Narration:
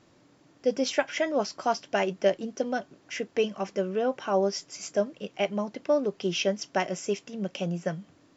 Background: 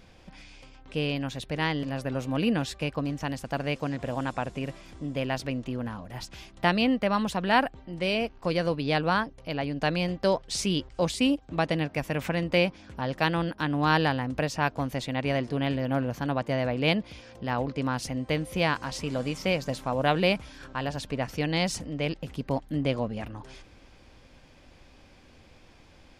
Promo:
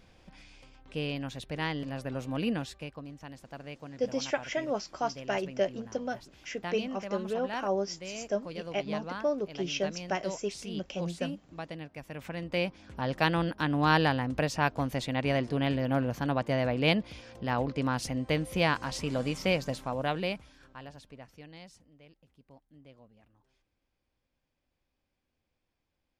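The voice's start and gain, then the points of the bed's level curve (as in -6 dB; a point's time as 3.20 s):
3.35 s, -5.0 dB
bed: 2.52 s -5 dB
3.03 s -14 dB
11.99 s -14 dB
13.08 s -1 dB
19.55 s -1 dB
22.05 s -28 dB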